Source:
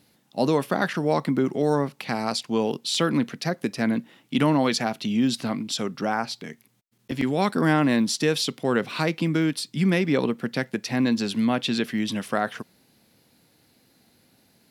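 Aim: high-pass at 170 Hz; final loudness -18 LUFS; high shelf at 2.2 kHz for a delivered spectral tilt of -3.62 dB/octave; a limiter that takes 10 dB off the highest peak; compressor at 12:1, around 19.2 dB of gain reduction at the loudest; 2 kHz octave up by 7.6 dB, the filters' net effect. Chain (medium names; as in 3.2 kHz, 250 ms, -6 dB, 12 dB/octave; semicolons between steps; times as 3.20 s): high-pass 170 Hz; peaking EQ 2 kHz +7.5 dB; treble shelf 2.2 kHz +4 dB; compression 12:1, threshold -35 dBFS; trim +22.5 dB; peak limiter -7 dBFS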